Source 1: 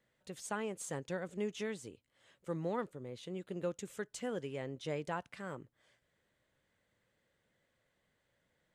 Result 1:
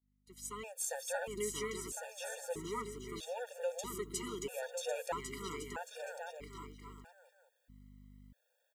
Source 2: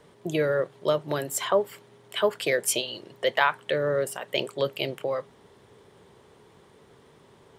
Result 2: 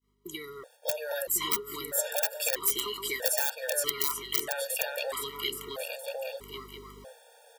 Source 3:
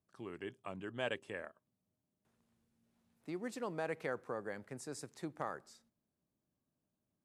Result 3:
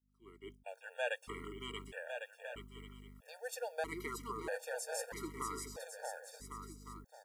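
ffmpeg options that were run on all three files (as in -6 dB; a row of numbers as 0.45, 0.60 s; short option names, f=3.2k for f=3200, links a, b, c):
-filter_complex "[0:a]adynamicequalizer=threshold=0.0112:dfrequency=510:dqfactor=0.79:tfrequency=510:tqfactor=0.79:attack=5:release=100:ratio=0.375:range=1.5:mode=cutabove:tftype=bell,highpass=58,aecho=1:1:630|1102|1457|1723|1922:0.631|0.398|0.251|0.158|0.1,aeval=exprs='val(0)+0.01*(sin(2*PI*50*n/s)+sin(2*PI*2*50*n/s)/2+sin(2*PI*3*50*n/s)/3+sin(2*PI*4*50*n/s)/4+sin(2*PI*5*50*n/s)/5)':c=same,aeval=exprs='(mod(5.01*val(0)+1,2)-1)/5.01':c=same,bass=f=250:g=-15,treble=f=4k:g=7,aexciter=amount=2.8:drive=3.2:freq=11k,acrossover=split=410|2400[a][b][c];[a]acompressor=threshold=-44dB:ratio=4[d];[b]acompressor=threshold=-35dB:ratio=4[e];[c]acompressor=threshold=-24dB:ratio=4[f];[d][e][f]amix=inputs=3:normalize=0,asoftclip=type=hard:threshold=-8.5dB,dynaudnorm=f=190:g=7:m=7dB,agate=range=-33dB:threshold=-42dB:ratio=3:detection=peak,afftfilt=real='re*gt(sin(2*PI*0.78*pts/sr)*(1-2*mod(floor(b*sr/1024/470),2)),0)':imag='im*gt(sin(2*PI*0.78*pts/sr)*(1-2*mod(floor(b*sr/1024/470),2)),0)':win_size=1024:overlap=0.75,volume=-3.5dB"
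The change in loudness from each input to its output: 0.0, -2.5, -0.5 LU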